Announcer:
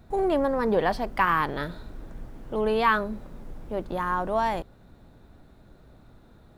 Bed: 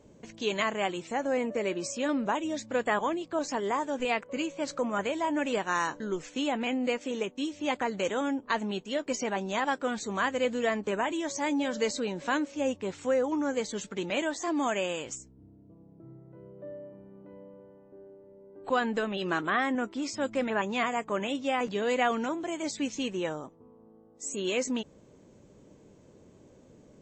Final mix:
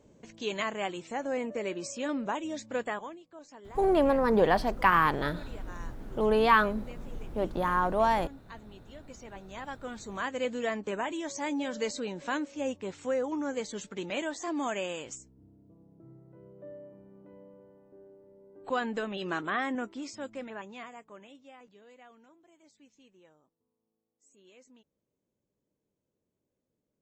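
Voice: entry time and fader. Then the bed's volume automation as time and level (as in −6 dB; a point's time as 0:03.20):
3.65 s, 0.0 dB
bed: 0:02.82 −3.5 dB
0:03.26 −19 dB
0:08.99 −19 dB
0:10.42 −3.5 dB
0:19.78 −3.5 dB
0:21.96 −28.5 dB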